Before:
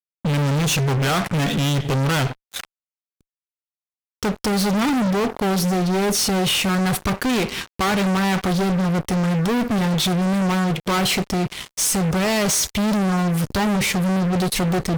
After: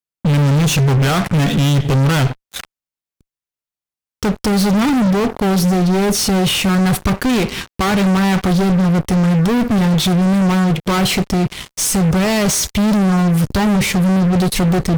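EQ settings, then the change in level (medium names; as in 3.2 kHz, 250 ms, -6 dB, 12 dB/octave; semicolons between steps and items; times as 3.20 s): bass shelf 240 Hz +6.5 dB; +2.5 dB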